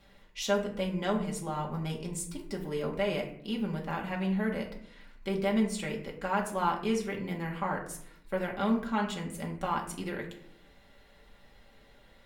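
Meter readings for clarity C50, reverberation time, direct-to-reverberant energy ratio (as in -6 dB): 9.0 dB, 0.70 s, -1.5 dB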